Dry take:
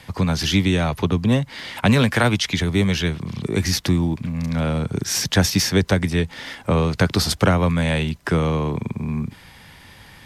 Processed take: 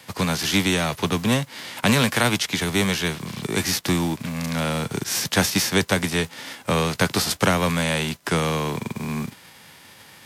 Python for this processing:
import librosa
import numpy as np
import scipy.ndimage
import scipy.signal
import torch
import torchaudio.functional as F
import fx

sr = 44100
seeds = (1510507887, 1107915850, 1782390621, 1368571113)

y = fx.envelope_flatten(x, sr, power=0.6)
y = scipy.signal.sosfilt(scipy.signal.butter(2, 120.0, 'highpass', fs=sr, output='sos'), y)
y = y * 10.0 ** (-2.0 / 20.0)